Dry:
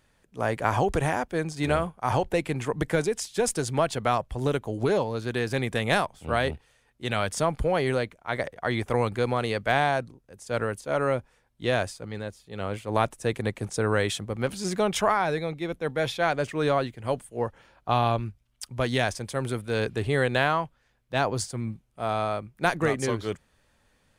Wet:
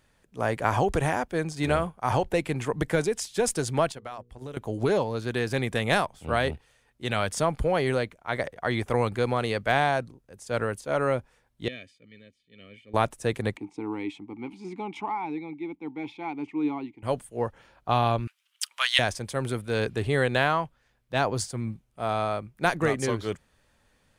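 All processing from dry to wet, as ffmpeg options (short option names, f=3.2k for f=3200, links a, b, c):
-filter_complex "[0:a]asettb=1/sr,asplit=3[a][b][c];[a]atrim=end=3.924[d];[b]atrim=start=3.92:end=4.57,asetpts=PTS-STARTPTS,afade=t=in:d=0.004:c=qsin,afade=t=out:st=0.646:d=0.004:c=qsin,bandreject=f=60:t=h:w=6,bandreject=f=120:t=h:w=6,bandreject=f=180:t=h:w=6,bandreject=f=240:t=h:w=6,bandreject=f=300:t=h:w=6,bandreject=f=360:t=h:w=6,bandreject=f=420:t=h:w=6,bandreject=f=480:t=h:w=6,agate=range=-11dB:threshold=-32dB:ratio=16:release=100:detection=peak,acompressor=threshold=-41dB:ratio=2.5:attack=3.2:release=140:knee=1:detection=peak[e];[c]atrim=start=4.566[f];[d][e]acrossfade=d=0.004:c1=hsin:c2=qsin[g];[g][f]acrossfade=d=0.004:c1=qsin:c2=hsin,asettb=1/sr,asplit=3[h][i][j];[h]atrim=end=11.684[k];[i]atrim=start=11.68:end=12.94,asetpts=PTS-STARTPTS,afade=t=in:d=0.004:c=qsin,afade=t=out:st=1.256:d=0.004:c=qsin,asplit=3[l][m][n];[l]bandpass=f=270:t=q:w=8,volume=0dB[o];[m]bandpass=f=2.29k:t=q:w=8,volume=-6dB[p];[n]bandpass=f=3.01k:t=q:w=8,volume=-9dB[q];[o][p][q]amix=inputs=3:normalize=0,highshelf=f=12k:g=4,aecho=1:1:1.7:0.74,atrim=end_sample=55566[r];[j]atrim=start=12.936[s];[k][r]acrossfade=d=0.004:c1=hsin:c2=qsin[t];[t][s]acrossfade=d=0.004:c1=qsin:c2=hsin,asettb=1/sr,asplit=3[u][v][w];[u]atrim=end=13.574[x];[v]atrim=start=13.57:end=17.03,asetpts=PTS-STARTPTS,afade=t=in:d=0.004:c=qsin,afade=t=out:st=3.456:d=0.004:c=qsin,acontrast=61,asplit=3[y][z][aa];[y]bandpass=f=300:t=q:w=8,volume=0dB[ab];[z]bandpass=f=870:t=q:w=8,volume=-6dB[ac];[aa]bandpass=f=2.24k:t=q:w=8,volume=-9dB[ad];[ab][ac][ad]amix=inputs=3:normalize=0[ae];[w]atrim=start=17.026[af];[x][ae]acrossfade=d=0.004:c1=hsin:c2=qsin[ag];[ag][af]acrossfade=d=0.004:c1=qsin:c2=hsin,asettb=1/sr,asplit=3[ah][ai][aj];[ah]atrim=end=18.274[ak];[ai]atrim=start=18.27:end=18.99,asetpts=PTS-STARTPTS,afade=t=in:d=0.004:c=qsin,afade=t=out:st=0.716:d=0.004:c=qsin,highpass=f=1.2k:w=0.5412,highpass=f=1.2k:w=1.3066,equalizer=f=3k:t=o:w=0.5:g=7.5,acontrast=80[al];[aj]atrim=start=18.986[am];[ak][al]acrossfade=d=0.004:c1=hsin:c2=qsin[an];[an][am]acrossfade=d=0.004:c1=qsin:c2=hsin"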